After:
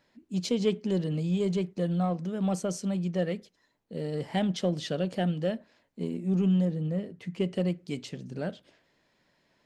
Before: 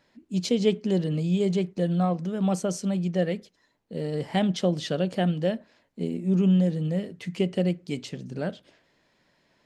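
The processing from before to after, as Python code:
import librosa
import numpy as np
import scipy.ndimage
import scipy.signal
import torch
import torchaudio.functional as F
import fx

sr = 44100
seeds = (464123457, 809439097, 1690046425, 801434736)

p1 = fx.high_shelf(x, sr, hz=2300.0, db=-8.5, at=(6.65, 7.41))
p2 = np.clip(p1, -10.0 ** (-23.5 / 20.0), 10.0 ** (-23.5 / 20.0))
p3 = p1 + F.gain(torch.from_numpy(p2), -12.0).numpy()
y = F.gain(torch.from_numpy(p3), -5.0).numpy()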